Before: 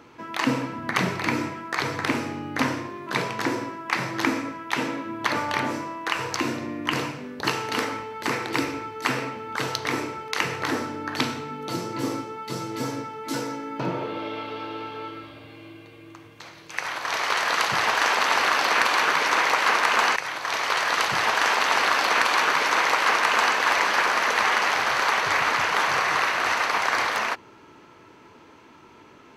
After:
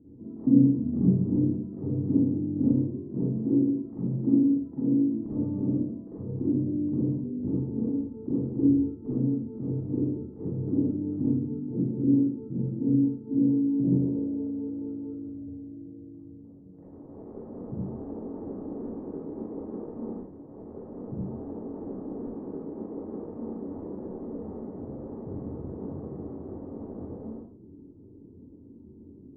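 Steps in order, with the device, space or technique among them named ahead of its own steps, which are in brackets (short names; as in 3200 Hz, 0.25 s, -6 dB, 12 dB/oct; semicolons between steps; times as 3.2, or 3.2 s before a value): next room (LPF 290 Hz 24 dB/oct; reverb RT60 0.45 s, pre-delay 40 ms, DRR -8.5 dB)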